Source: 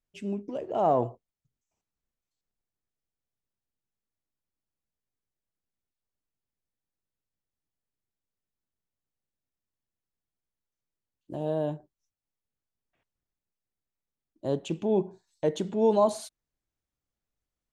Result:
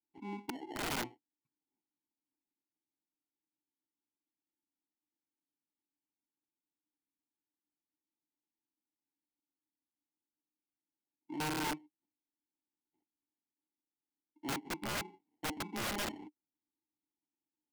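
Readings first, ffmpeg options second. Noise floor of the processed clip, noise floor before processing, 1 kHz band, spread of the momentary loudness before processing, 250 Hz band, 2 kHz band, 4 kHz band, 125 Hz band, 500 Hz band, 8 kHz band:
under -85 dBFS, under -85 dBFS, -10.0 dB, 16 LU, -10.5 dB, +11.0 dB, +4.0 dB, -11.5 dB, -20.0 dB, no reading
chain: -filter_complex "[0:a]acrusher=samples=36:mix=1:aa=0.000001,asplit=3[s0][s1][s2];[s0]bandpass=f=300:t=q:w=8,volume=1[s3];[s1]bandpass=f=870:t=q:w=8,volume=0.501[s4];[s2]bandpass=f=2240:t=q:w=8,volume=0.355[s5];[s3][s4][s5]amix=inputs=3:normalize=0,aeval=exprs='(mod(59.6*val(0)+1,2)-1)/59.6':c=same,volume=1.58"

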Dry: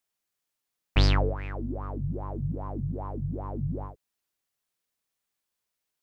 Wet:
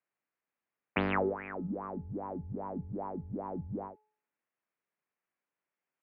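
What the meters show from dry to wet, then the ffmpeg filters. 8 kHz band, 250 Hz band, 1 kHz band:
no reading, -2.5 dB, -0.5 dB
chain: -af "highpass=f=210:t=q:w=0.5412,highpass=f=210:t=q:w=1.307,lowpass=f=2500:t=q:w=0.5176,lowpass=f=2500:t=q:w=0.7071,lowpass=f=2500:t=q:w=1.932,afreqshift=-58,bandreject=f=427.1:t=h:w=4,bandreject=f=854.2:t=h:w=4,bandreject=f=1281.3:t=h:w=4"

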